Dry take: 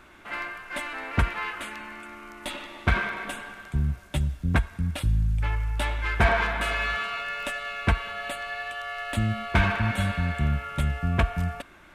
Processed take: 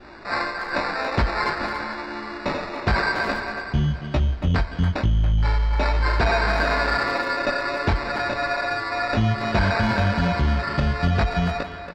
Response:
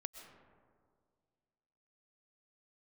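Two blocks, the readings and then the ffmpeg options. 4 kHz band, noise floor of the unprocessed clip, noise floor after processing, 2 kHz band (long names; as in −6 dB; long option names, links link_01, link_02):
+5.0 dB, −51 dBFS, −35 dBFS, +4.0 dB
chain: -filter_complex "[0:a]adynamicequalizer=threshold=0.00794:dfrequency=1100:dqfactor=2.5:tfrequency=1100:tqfactor=2.5:attack=5:release=100:ratio=0.375:range=2.5:mode=cutabove:tftype=bell,flanger=delay=16.5:depth=7:speed=0.96,equalizer=frequency=580:width_type=o:width=2.2:gain=5,asplit=2[link_01][link_02];[link_02]alimiter=limit=-20.5dB:level=0:latency=1:release=54,volume=3dB[link_03];[link_01][link_03]amix=inputs=2:normalize=0,volume=13.5dB,asoftclip=hard,volume=-13.5dB,asplit=2[link_04][link_05];[1:a]atrim=start_sample=2205[link_06];[link_05][link_06]afir=irnorm=-1:irlink=0,volume=-5.5dB[link_07];[link_04][link_07]amix=inputs=2:normalize=0,acrusher=samples=14:mix=1:aa=0.000001,lowpass=frequency=4700:width=0.5412,lowpass=frequency=4700:width=1.3066,asplit=2[link_08][link_09];[link_09]adelay=280,highpass=300,lowpass=3400,asoftclip=type=hard:threshold=-17.5dB,volume=-8dB[link_10];[link_08][link_10]amix=inputs=2:normalize=0,acompressor=threshold=-16dB:ratio=6"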